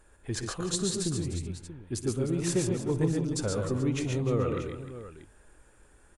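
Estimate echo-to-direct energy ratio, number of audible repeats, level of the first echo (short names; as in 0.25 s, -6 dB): -1.5 dB, 5, -17.0 dB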